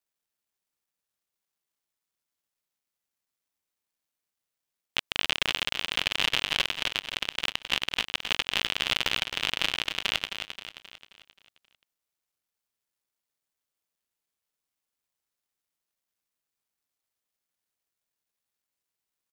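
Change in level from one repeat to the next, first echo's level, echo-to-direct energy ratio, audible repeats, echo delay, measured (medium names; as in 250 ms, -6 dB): -6.5 dB, -8.0 dB, -7.0 dB, 5, 265 ms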